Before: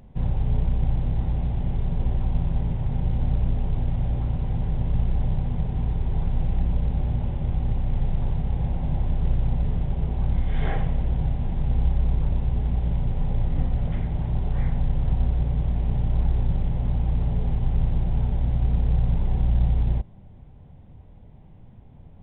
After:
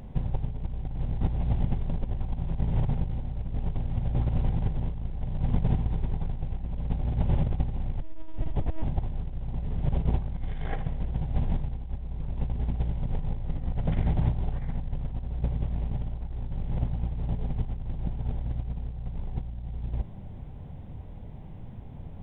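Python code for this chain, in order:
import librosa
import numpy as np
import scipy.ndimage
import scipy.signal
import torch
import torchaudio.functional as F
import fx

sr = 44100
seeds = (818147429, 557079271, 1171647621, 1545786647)

y = fx.over_compress(x, sr, threshold_db=-26.0, ratio=-0.5)
y = fx.lpc_vocoder(y, sr, seeds[0], excitation='pitch_kept', order=10, at=(8.02, 8.85))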